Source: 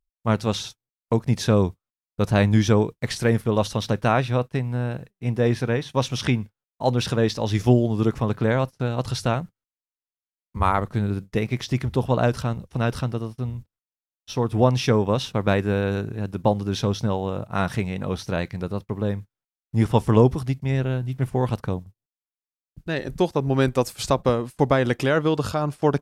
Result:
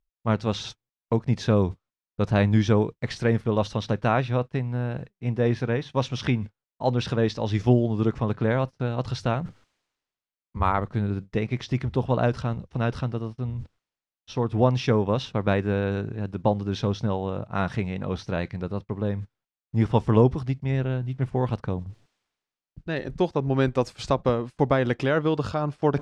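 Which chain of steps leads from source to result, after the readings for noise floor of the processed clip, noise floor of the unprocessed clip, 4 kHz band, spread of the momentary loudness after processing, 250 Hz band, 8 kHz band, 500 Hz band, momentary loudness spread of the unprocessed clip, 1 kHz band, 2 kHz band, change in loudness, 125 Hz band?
below −85 dBFS, below −85 dBFS, −5.0 dB, 10 LU, −2.0 dB, can't be measured, −2.5 dB, 10 LU, −2.5 dB, −3.0 dB, −2.5 dB, −2.0 dB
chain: reversed playback
upward compression, threshold −25 dBFS
reversed playback
high-frequency loss of the air 110 metres
level −2 dB

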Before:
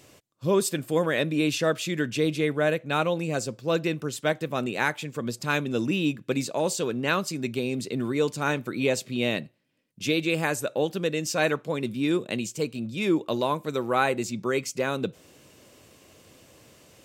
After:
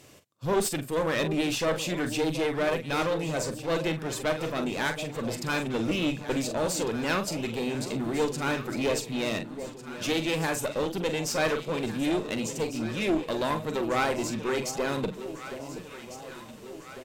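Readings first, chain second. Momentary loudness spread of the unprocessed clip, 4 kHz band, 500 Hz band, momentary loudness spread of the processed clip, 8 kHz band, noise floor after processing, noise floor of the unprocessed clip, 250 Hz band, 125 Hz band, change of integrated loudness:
5 LU, −0.5 dB, −2.0 dB, 11 LU, 0.0 dB, −45 dBFS, −57 dBFS, −2.0 dB, −2.5 dB, −2.0 dB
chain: double-tracking delay 44 ms −9.5 dB
asymmetric clip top −29 dBFS
delay that swaps between a low-pass and a high-pass 725 ms, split 920 Hz, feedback 74%, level −10.5 dB

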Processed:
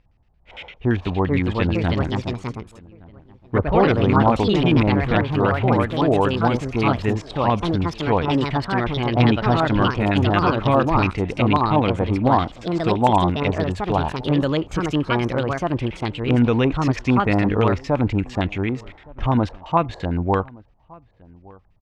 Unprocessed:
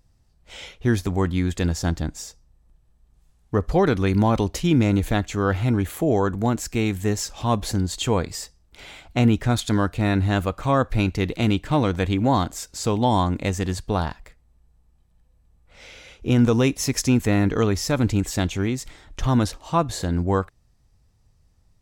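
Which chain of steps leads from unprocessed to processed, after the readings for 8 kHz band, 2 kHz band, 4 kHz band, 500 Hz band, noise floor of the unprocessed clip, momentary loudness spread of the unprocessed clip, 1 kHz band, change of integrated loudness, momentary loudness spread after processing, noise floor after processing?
below −10 dB, +4.5 dB, +2.0 dB, +4.0 dB, −61 dBFS, 9 LU, +6.5 dB, +2.5 dB, 8 LU, −54 dBFS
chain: auto-filter low-pass square 8.8 Hz 880–2,600 Hz
delay with pitch and tempo change per echo 573 ms, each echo +3 semitones, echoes 2
slap from a distant wall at 200 metres, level −24 dB

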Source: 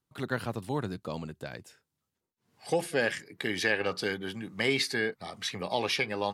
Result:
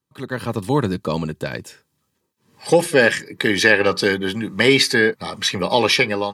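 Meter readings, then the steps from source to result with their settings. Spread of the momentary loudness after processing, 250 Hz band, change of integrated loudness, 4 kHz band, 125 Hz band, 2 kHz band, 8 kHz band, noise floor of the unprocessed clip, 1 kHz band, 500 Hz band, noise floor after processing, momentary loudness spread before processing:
13 LU, +13.5 dB, +13.5 dB, +13.0 dB, +12.5 dB, +13.0 dB, +13.0 dB, −85 dBFS, +11.5 dB, +13.5 dB, −72 dBFS, 11 LU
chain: automatic gain control gain up to 11.5 dB
notch comb filter 710 Hz
level +3.5 dB

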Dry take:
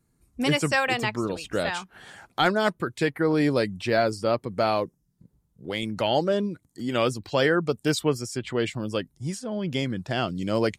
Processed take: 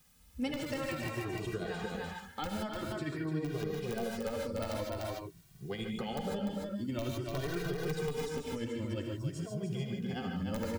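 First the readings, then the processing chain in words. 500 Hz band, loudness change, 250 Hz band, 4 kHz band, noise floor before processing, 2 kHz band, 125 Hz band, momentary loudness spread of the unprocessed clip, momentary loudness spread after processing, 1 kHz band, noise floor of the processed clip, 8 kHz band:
−12.0 dB, −11.5 dB, −9.0 dB, −13.5 dB, −71 dBFS, −14.5 dB, −6.5 dB, 9 LU, 4 LU, −14.0 dB, −57 dBFS, −10.5 dB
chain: amplitude tremolo 11 Hz, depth 70%
high-shelf EQ 11,000 Hz −6 dB
wrap-around overflow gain 13.5 dB
low-shelf EQ 220 Hz +11.5 dB
reverb whose tail is shaped and stops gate 170 ms rising, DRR 2 dB
bit-depth reduction 10 bits, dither triangular
de-essing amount 50%
single-tap delay 297 ms −5 dB
downward compressor 5 to 1, threshold −27 dBFS, peak gain reduction 13 dB
barber-pole flanger 2 ms +0.49 Hz
level −3.5 dB

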